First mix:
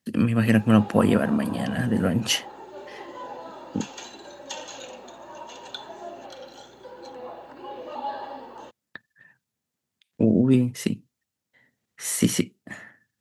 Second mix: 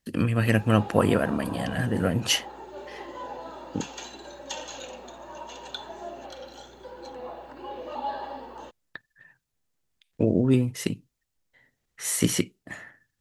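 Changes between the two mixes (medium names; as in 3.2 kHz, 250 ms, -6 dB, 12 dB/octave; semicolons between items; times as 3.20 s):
speech: add peaking EQ 220 Hz -7.5 dB 0.39 oct; master: remove high-pass 82 Hz 24 dB/octave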